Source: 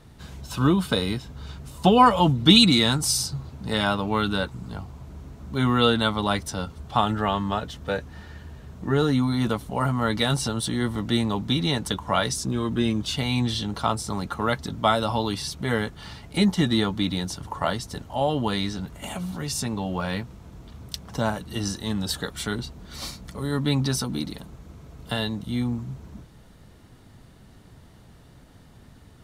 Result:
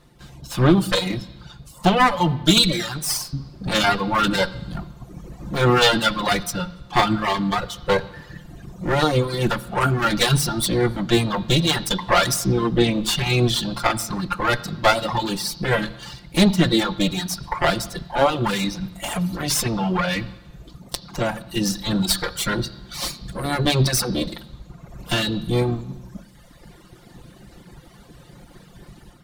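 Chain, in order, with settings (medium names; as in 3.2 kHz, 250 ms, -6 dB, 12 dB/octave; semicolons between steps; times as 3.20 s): comb filter that takes the minimum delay 5.7 ms; reverb removal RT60 1.5 s; level rider gain up to 11 dB; on a send: resonant low-pass 4.5 kHz, resonance Q 4.5 + reverberation RT60 1.1 s, pre-delay 3 ms, DRR 14.5 dB; on the sum: trim -1 dB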